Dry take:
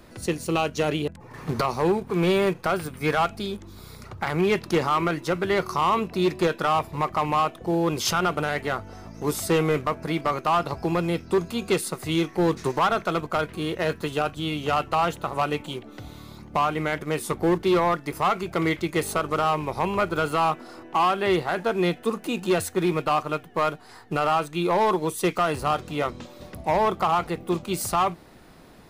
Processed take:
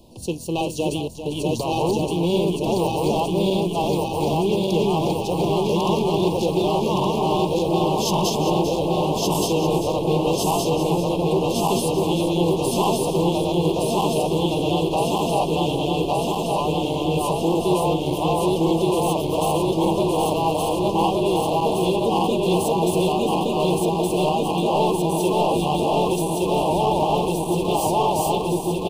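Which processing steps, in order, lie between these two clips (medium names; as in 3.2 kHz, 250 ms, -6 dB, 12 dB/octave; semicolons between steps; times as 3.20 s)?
backward echo that repeats 584 ms, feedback 85%, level -0.5 dB; elliptic band-stop 950–2800 Hz, stop band 40 dB; in parallel at -2 dB: peak limiter -14.5 dBFS, peak gain reduction 8 dB; on the sum: delay 397 ms -10 dB; trim -4.5 dB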